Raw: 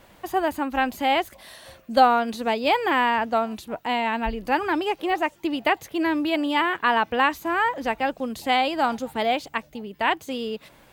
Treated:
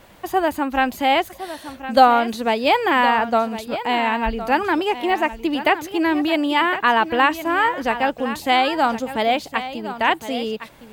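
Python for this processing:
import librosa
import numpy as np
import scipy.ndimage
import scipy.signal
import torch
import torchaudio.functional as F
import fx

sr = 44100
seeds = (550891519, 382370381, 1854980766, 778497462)

y = x + 10.0 ** (-12.5 / 20.0) * np.pad(x, (int(1061 * sr / 1000.0), 0))[:len(x)]
y = F.gain(torch.from_numpy(y), 4.0).numpy()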